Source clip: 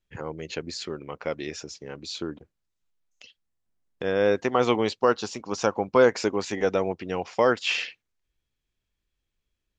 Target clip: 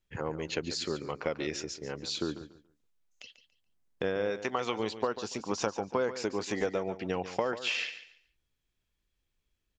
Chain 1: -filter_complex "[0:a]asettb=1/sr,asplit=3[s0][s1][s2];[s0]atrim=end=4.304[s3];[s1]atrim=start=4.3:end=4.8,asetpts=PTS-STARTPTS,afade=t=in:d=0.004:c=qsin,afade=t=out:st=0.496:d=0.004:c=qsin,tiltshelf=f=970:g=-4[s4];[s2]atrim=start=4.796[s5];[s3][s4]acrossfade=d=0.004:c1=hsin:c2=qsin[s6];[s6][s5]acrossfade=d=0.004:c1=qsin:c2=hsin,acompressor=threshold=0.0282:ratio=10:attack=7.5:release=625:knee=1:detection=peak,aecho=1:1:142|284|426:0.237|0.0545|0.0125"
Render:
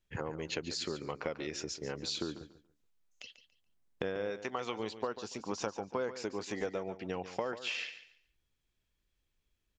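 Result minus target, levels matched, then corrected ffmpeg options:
compression: peak gain reduction +5.5 dB
-filter_complex "[0:a]asettb=1/sr,asplit=3[s0][s1][s2];[s0]atrim=end=4.304[s3];[s1]atrim=start=4.3:end=4.8,asetpts=PTS-STARTPTS,afade=t=in:d=0.004:c=qsin,afade=t=out:st=0.496:d=0.004:c=qsin,tiltshelf=f=970:g=-4[s4];[s2]atrim=start=4.796[s5];[s3][s4]acrossfade=d=0.004:c1=hsin:c2=qsin[s6];[s6][s5]acrossfade=d=0.004:c1=qsin:c2=hsin,acompressor=threshold=0.0562:ratio=10:attack=7.5:release=625:knee=1:detection=peak,aecho=1:1:142|284|426:0.237|0.0545|0.0125"

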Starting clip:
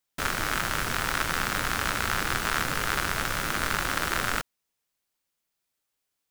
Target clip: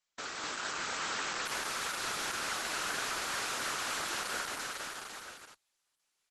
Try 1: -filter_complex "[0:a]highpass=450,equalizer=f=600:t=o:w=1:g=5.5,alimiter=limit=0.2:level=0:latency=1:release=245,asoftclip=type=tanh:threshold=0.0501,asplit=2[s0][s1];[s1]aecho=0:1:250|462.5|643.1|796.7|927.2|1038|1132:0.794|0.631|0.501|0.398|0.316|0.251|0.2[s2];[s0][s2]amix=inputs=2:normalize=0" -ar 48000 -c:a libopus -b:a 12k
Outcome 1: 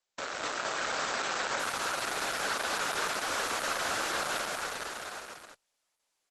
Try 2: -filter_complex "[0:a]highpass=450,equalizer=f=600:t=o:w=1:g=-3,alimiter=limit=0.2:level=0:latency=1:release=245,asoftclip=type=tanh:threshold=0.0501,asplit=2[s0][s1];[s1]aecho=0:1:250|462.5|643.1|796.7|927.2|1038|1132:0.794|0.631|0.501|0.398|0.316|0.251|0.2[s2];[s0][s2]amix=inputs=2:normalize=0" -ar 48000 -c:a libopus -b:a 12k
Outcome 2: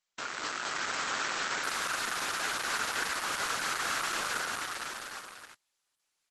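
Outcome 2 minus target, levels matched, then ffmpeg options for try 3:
saturation: distortion -5 dB
-filter_complex "[0:a]highpass=450,equalizer=f=600:t=o:w=1:g=-3,alimiter=limit=0.2:level=0:latency=1:release=245,asoftclip=type=tanh:threshold=0.0211,asplit=2[s0][s1];[s1]aecho=0:1:250|462.5|643.1|796.7|927.2|1038|1132:0.794|0.631|0.501|0.398|0.316|0.251|0.2[s2];[s0][s2]amix=inputs=2:normalize=0" -ar 48000 -c:a libopus -b:a 12k

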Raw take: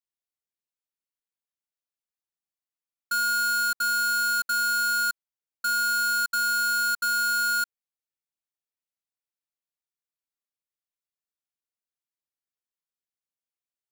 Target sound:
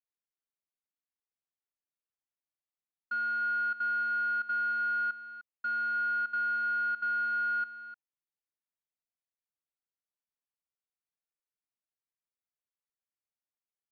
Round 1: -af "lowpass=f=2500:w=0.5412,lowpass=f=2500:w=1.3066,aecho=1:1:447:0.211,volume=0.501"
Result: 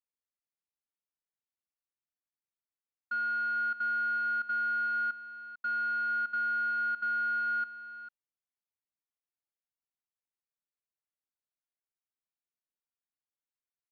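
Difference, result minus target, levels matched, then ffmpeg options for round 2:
echo 145 ms late
-af "lowpass=f=2500:w=0.5412,lowpass=f=2500:w=1.3066,aecho=1:1:302:0.211,volume=0.501"

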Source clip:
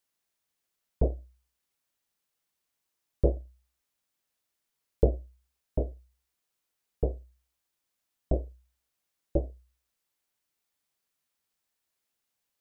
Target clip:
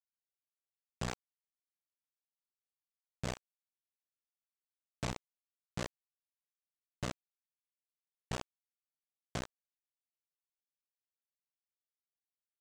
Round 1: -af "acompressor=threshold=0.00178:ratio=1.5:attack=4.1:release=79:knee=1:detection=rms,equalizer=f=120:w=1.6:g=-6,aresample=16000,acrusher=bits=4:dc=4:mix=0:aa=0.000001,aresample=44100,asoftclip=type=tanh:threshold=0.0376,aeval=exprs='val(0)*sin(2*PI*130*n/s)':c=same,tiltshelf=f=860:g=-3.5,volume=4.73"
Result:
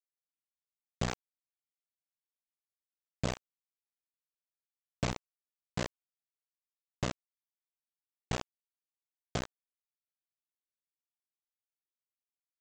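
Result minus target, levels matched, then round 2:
saturation: distortion -8 dB
-af "acompressor=threshold=0.00178:ratio=1.5:attack=4.1:release=79:knee=1:detection=rms,equalizer=f=120:w=1.6:g=-6,aresample=16000,acrusher=bits=4:dc=4:mix=0:aa=0.000001,aresample=44100,asoftclip=type=tanh:threshold=0.0119,aeval=exprs='val(0)*sin(2*PI*130*n/s)':c=same,tiltshelf=f=860:g=-3.5,volume=4.73"

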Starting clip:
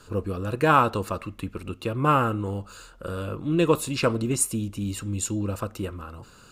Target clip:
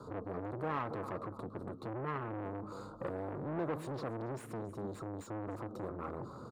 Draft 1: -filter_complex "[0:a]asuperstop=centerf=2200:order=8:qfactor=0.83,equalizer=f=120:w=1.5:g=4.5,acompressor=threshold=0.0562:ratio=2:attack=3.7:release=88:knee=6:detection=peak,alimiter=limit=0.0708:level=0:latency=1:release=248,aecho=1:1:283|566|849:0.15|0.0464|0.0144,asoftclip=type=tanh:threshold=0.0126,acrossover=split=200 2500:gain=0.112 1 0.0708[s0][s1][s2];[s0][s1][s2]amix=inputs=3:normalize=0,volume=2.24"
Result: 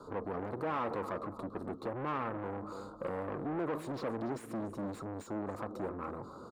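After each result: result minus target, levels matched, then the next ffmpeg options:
compression: peak gain reduction +7 dB; 125 Hz band -4.0 dB
-filter_complex "[0:a]asuperstop=centerf=2200:order=8:qfactor=0.83,equalizer=f=120:w=1.5:g=4.5,alimiter=limit=0.0708:level=0:latency=1:release=248,aecho=1:1:283|566|849:0.15|0.0464|0.0144,asoftclip=type=tanh:threshold=0.0126,acrossover=split=200 2500:gain=0.112 1 0.0708[s0][s1][s2];[s0][s1][s2]amix=inputs=3:normalize=0,volume=2.24"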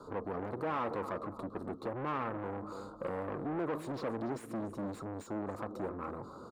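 125 Hz band -4.5 dB
-filter_complex "[0:a]asuperstop=centerf=2200:order=8:qfactor=0.83,equalizer=f=120:w=1.5:g=15,alimiter=limit=0.0708:level=0:latency=1:release=248,aecho=1:1:283|566|849:0.15|0.0464|0.0144,asoftclip=type=tanh:threshold=0.0126,acrossover=split=200 2500:gain=0.112 1 0.0708[s0][s1][s2];[s0][s1][s2]amix=inputs=3:normalize=0,volume=2.24"

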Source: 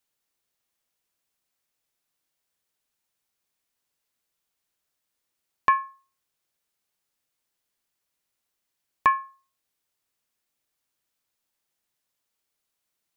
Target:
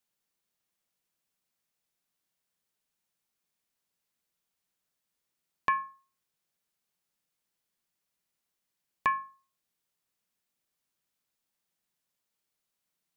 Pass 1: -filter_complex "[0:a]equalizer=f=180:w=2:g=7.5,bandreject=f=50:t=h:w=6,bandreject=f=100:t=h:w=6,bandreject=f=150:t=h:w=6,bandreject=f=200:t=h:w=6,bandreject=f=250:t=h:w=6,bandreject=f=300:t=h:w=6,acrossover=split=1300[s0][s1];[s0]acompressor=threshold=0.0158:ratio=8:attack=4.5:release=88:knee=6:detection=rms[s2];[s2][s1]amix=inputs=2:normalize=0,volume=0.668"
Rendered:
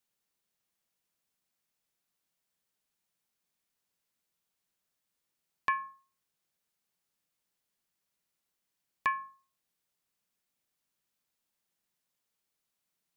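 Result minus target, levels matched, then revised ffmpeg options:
compression: peak gain reduction +9 dB
-filter_complex "[0:a]equalizer=f=180:w=2:g=7.5,bandreject=f=50:t=h:w=6,bandreject=f=100:t=h:w=6,bandreject=f=150:t=h:w=6,bandreject=f=200:t=h:w=6,bandreject=f=250:t=h:w=6,bandreject=f=300:t=h:w=6,acrossover=split=1300[s0][s1];[s0]acompressor=threshold=0.0531:ratio=8:attack=4.5:release=88:knee=6:detection=rms[s2];[s2][s1]amix=inputs=2:normalize=0,volume=0.668"

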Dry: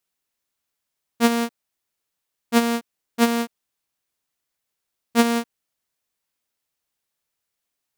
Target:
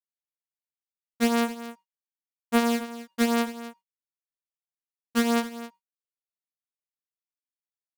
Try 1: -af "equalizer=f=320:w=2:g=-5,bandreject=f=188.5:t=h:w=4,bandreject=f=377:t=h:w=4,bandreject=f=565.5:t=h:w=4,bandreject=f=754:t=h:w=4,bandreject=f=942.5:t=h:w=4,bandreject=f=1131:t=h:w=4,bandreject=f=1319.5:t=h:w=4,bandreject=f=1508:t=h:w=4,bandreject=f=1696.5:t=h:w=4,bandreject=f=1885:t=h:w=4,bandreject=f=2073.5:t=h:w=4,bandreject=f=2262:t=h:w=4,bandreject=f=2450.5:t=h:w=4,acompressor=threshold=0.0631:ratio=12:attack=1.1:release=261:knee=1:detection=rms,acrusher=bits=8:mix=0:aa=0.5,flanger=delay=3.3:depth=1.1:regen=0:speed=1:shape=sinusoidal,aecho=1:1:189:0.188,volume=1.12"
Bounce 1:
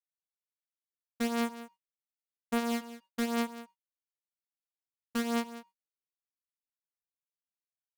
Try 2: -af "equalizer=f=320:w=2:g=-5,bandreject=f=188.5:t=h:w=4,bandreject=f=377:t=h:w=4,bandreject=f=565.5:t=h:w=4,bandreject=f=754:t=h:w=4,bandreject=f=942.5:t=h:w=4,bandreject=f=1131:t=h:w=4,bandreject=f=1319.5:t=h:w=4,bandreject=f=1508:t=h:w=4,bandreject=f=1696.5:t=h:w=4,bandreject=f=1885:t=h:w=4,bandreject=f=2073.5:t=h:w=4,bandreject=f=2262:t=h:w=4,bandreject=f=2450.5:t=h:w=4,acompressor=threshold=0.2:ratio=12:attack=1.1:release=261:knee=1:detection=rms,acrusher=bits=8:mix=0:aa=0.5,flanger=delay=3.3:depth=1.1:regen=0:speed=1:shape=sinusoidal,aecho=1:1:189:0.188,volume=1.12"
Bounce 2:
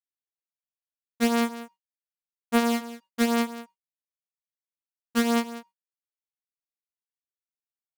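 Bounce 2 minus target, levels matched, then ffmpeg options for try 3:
echo 73 ms early
-af "equalizer=f=320:w=2:g=-5,bandreject=f=188.5:t=h:w=4,bandreject=f=377:t=h:w=4,bandreject=f=565.5:t=h:w=4,bandreject=f=754:t=h:w=4,bandreject=f=942.5:t=h:w=4,bandreject=f=1131:t=h:w=4,bandreject=f=1319.5:t=h:w=4,bandreject=f=1508:t=h:w=4,bandreject=f=1696.5:t=h:w=4,bandreject=f=1885:t=h:w=4,bandreject=f=2073.5:t=h:w=4,bandreject=f=2262:t=h:w=4,bandreject=f=2450.5:t=h:w=4,acompressor=threshold=0.2:ratio=12:attack=1.1:release=261:knee=1:detection=rms,acrusher=bits=8:mix=0:aa=0.5,flanger=delay=3.3:depth=1.1:regen=0:speed=1:shape=sinusoidal,aecho=1:1:262:0.188,volume=1.12"

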